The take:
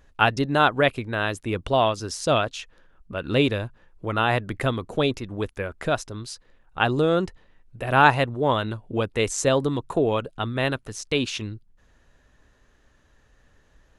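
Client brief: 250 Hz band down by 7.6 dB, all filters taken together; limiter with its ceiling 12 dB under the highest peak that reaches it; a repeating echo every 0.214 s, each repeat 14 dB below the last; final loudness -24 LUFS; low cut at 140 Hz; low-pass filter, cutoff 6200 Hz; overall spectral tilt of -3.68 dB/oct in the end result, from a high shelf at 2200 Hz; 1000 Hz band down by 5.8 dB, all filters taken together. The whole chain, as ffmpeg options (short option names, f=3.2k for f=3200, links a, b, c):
-af "highpass=140,lowpass=6.2k,equalizer=f=250:t=o:g=-9,equalizer=f=1k:t=o:g=-8.5,highshelf=f=2.2k:g=4,alimiter=limit=-15dB:level=0:latency=1,aecho=1:1:214|428:0.2|0.0399,volume=6dB"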